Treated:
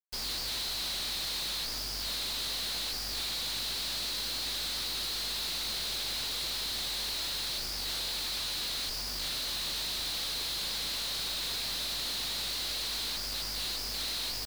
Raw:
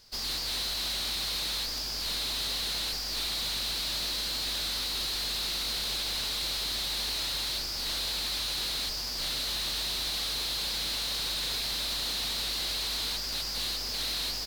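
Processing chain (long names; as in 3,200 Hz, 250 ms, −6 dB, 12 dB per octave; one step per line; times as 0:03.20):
bit-depth reduction 6 bits, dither none
level −3.5 dB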